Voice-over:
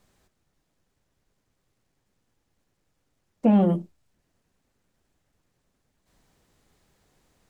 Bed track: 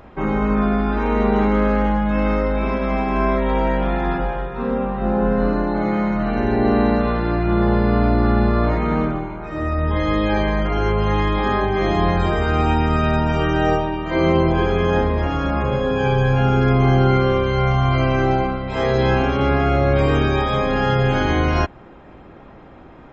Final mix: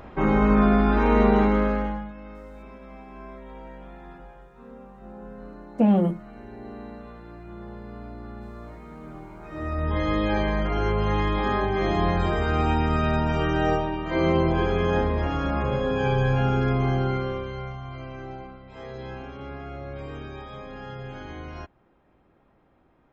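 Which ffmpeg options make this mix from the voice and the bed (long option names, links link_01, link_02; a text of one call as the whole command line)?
ffmpeg -i stem1.wav -i stem2.wav -filter_complex "[0:a]adelay=2350,volume=-0.5dB[link_01];[1:a]volume=18dB,afade=type=out:start_time=1.19:duration=0.95:silence=0.0707946,afade=type=in:start_time=9.01:duration=0.97:silence=0.125893,afade=type=out:start_time=16.3:duration=1.5:silence=0.177828[link_02];[link_01][link_02]amix=inputs=2:normalize=0" out.wav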